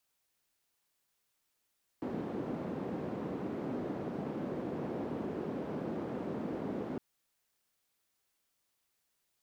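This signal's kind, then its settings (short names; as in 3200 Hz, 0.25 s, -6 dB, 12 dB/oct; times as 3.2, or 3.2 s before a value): noise band 220–300 Hz, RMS -38 dBFS 4.96 s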